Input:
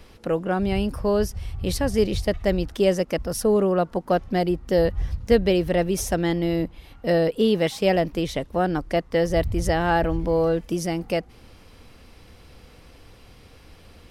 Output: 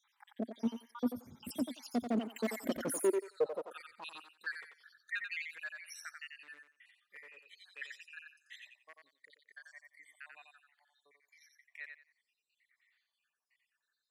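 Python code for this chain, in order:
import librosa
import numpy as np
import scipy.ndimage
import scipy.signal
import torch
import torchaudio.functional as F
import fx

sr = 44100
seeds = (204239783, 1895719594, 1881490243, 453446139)

p1 = fx.spec_dropout(x, sr, seeds[0], share_pct=78)
p2 = fx.doppler_pass(p1, sr, speed_mps=50, closest_m=14.0, pass_at_s=2.86)
p3 = fx.over_compress(p2, sr, threshold_db=-40.0, ratio=-1.0)
p4 = p2 + (p3 * librosa.db_to_amplitude(1.0))
p5 = np.clip(p4, -10.0 ** (-29.0 / 20.0), 10.0 ** (-29.0 / 20.0))
p6 = p5 + fx.echo_thinned(p5, sr, ms=89, feedback_pct=23, hz=440.0, wet_db=-5, dry=0)
p7 = fx.filter_sweep_highpass(p6, sr, from_hz=240.0, to_hz=1900.0, start_s=2.8, end_s=4.56, q=6.1)
y = p7 * librosa.db_to_amplitude(-5.5)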